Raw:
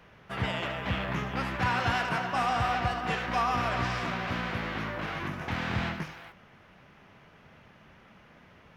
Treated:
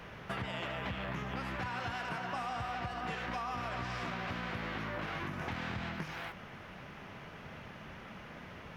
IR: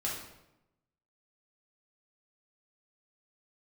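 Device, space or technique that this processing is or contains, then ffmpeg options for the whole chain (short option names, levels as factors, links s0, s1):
serial compression, peaks first: -af "acompressor=threshold=0.0126:ratio=6,acompressor=threshold=0.00501:ratio=2,volume=2.24"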